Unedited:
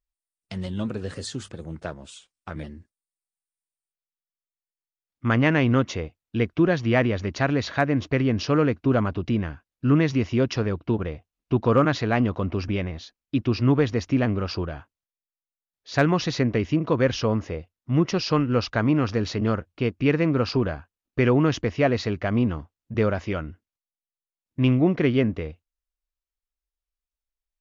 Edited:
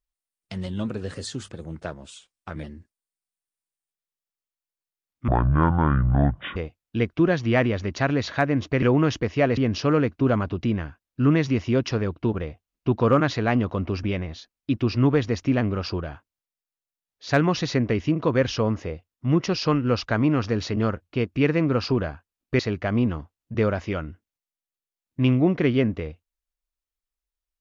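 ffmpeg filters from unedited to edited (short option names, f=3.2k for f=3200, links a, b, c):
-filter_complex "[0:a]asplit=6[a][b][c][d][e][f];[a]atrim=end=5.284[g];[b]atrim=start=5.28:end=5.96,asetpts=PTS-STARTPTS,asetrate=23373,aresample=44100,atrim=end_sample=56581,asetpts=PTS-STARTPTS[h];[c]atrim=start=5.956:end=8.222[i];[d]atrim=start=21.238:end=21.992[j];[e]atrim=start=8.218:end=21.242[k];[f]atrim=start=21.988[l];[g][h]acrossfade=d=0.004:c1=hsin:c2=hsin[m];[m][i]acrossfade=d=0.004:c1=hsin:c2=hsin[n];[n][j]acrossfade=d=0.004:c1=hsin:c2=hsin[o];[o][k]acrossfade=d=0.004:c1=hsin:c2=hsin[p];[p][l]acrossfade=d=0.004:c1=hsin:c2=hsin"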